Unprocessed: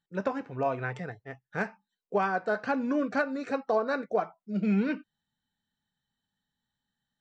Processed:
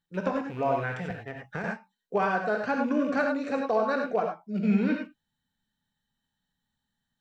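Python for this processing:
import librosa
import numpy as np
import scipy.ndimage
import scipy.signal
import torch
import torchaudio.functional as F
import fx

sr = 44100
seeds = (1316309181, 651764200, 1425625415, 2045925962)

y = fx.rattle_buzz(x, sr, strikes_db=-41.0, level_db=-40.0)
y = fx.low_shelf(y, sr, hz=84.0, db=6.5)
y = fx.rev_gated(y, sr, seeds[0], gate_ms=120, shape='rising', drr_db=2.5)
y = fx.band_squash(y, sr, depth_pct=100, at=(1.1, 1.64))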